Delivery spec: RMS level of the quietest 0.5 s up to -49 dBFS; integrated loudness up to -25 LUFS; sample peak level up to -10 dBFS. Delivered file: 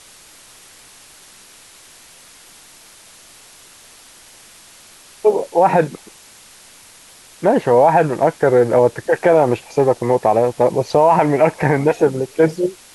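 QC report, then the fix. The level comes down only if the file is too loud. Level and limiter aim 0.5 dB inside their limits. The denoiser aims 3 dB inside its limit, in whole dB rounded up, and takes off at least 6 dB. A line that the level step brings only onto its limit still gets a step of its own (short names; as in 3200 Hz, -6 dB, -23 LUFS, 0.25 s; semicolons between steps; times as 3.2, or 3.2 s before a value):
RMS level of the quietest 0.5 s -44 dBFS: fail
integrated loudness -15.5 LUFS: fail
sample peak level -3.0 dBFS: fail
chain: gain -10 dB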